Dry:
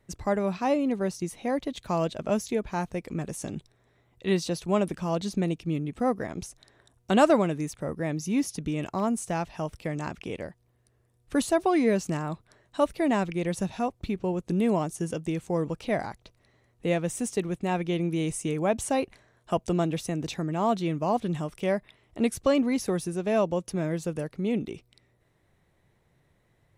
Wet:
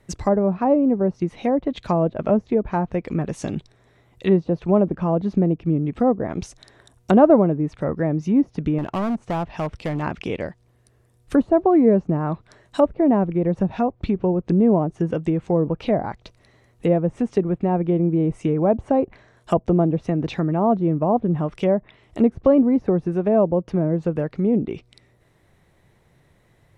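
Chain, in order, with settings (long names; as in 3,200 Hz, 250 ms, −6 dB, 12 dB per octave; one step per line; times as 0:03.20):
treble cut that deepens with the level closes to 740 Hz, closed at −24 dBFS
0:08.78–0:10.03: hard clipping −28.5 dBFS, distortion −23 dB
level +8.5 dB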